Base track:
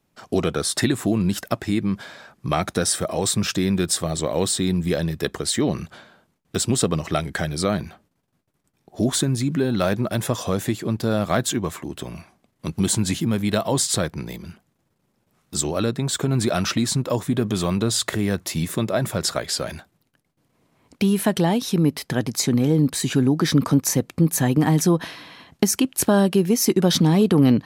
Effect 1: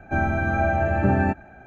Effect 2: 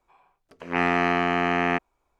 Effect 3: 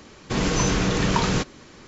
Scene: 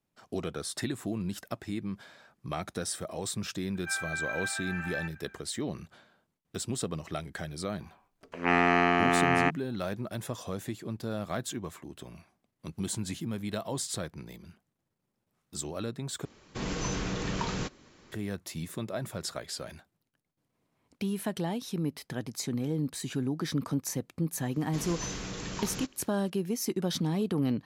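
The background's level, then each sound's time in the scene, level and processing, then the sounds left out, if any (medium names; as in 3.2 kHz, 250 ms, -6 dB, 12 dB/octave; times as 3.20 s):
base track -13 dB
3.75 s: add 1 -3.5 dB + high-pass 1.4 kHz 24 dB/octave
7.72 s: add 2 -1.5 dB
16.25 s: replace with 3 -11 dB
24.43 s: add 3 -17 dB + treble shelf 5.4 kHz +11.5 dB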